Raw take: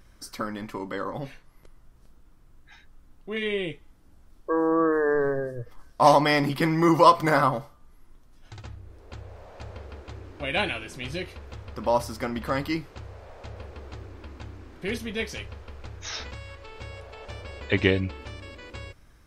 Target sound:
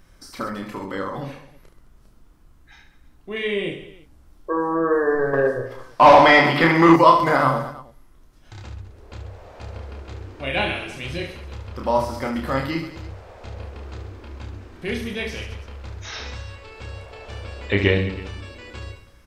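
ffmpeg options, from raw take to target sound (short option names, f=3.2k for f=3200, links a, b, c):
-filter_complex "[0:a]aecho=1:1:30|72|130.8|213.1|328.4:0.631|0.398|0.251|0.158|0.1,asettb=1/sr,asplit=3[a][b][c];[a]atrim=end=5.334[d];[b]atrim=start=5.33:end=6.96,asetpts=PTS-STARTPTS,afade=t=in:d=0.004:c=qsin,afade=t=out:st=1.626:d=0.004:c=qsin,asplit=2[e][f];[f]highpass=f=720:p=1,volume=17dB,asoftclip=type=tanh:threshold=-3.5dB[g];[e][g]amix=inputs=2:normalize=0,lowpass=f=3.4k:p=1,volume=-6dB[h];[c]atrim=start=6.956[i];[d][h]acrossfade=d=0.004:c1=hsin:c2=qsin[j];[j][i]acrossfade=d=0.004:c1=qsin:c2=hsin,acrossover=split=4400[k][l];[l]acompressor=threshold=-45dB:ratio=4:attack=1:release=60[m];[k][m]amix=inputs=2:normalize=0,volume=1.5dB"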